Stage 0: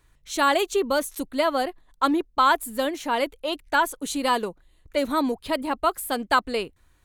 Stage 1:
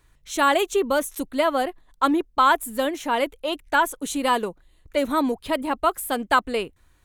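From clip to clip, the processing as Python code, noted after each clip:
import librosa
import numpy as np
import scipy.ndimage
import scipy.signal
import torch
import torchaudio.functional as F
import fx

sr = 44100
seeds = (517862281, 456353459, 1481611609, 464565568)

y = fx.dynamic_eq(x, sr, hz=4500.0, q=4.4, threshold_db=-51.0, ratio=4.0, max_db=-8)
y = y * librosa.db_to_amplitude(1.5)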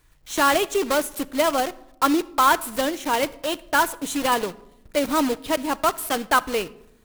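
y = fx.block_float(x, sr, bits=3)
y = fx.room_shoebox(y, sr, seeds[0], volume_m3=2800.0, walls='furnished', distance_m=0.51)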